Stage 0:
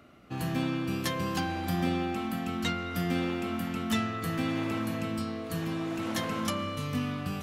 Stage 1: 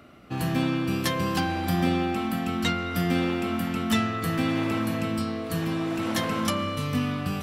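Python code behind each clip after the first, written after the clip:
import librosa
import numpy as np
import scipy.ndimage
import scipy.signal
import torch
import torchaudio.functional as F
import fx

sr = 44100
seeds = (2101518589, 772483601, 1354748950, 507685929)

y = fx.notch(x, sr, hz=6600.0, q=17.0)
y = y * librosa.db_to_amplitude(5.0)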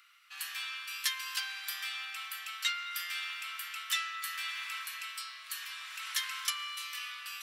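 y = scipy.signal.sosfilt(scipy.signal.bessel(8, 2200.0, 'highpass', norm='mag', fs=sr, output='sos'), x)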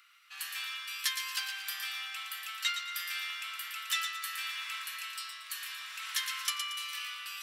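y = fx.echo_wet_highpass(x, sr, ms=115, feedback_pct=35, hz=1800.0, wet_db=-6.5)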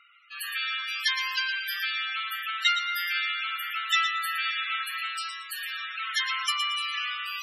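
y = fx.spec_topn(x, sr, count=32)
y = fx.dynamic_eq(y, sr, hz=1400.0, q=0.81, threshold_db=-52.0, ratio=4.0, max_db=6)
y = y * librosa.db_to_amplitude(6.5)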